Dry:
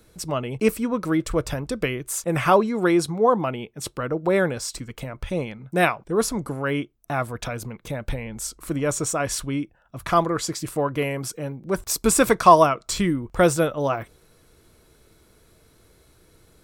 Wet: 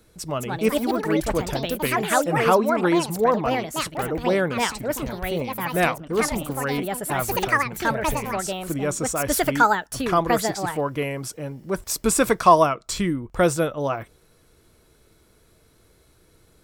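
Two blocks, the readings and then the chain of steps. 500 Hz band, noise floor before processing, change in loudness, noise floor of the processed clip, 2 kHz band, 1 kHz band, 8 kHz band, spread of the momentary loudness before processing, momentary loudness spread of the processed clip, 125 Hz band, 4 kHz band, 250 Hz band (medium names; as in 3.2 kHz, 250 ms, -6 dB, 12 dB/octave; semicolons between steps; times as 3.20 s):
0.0 dB, -58 dBFS, +0.5 dB, -58 dBFS, +3.0 dB, +1.0 dB, -0.5 dB, 13 LU, 9 LU, -1.0 dB, +2.0 dB, 0.0 dB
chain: ever faster or slower copies 263 ms, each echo +5 st, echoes 2; trim -1.5 dB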